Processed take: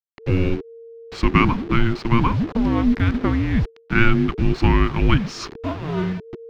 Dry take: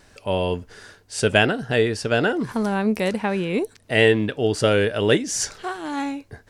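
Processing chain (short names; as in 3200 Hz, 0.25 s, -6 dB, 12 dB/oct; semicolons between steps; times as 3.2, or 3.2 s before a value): level-crossing sampler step -30 dBFS; in parallel at -3 dB: hard clip -16.5 dBFS, distortion -10 dB; on the sum: frequency shift -460 Hz; air absorption 250 m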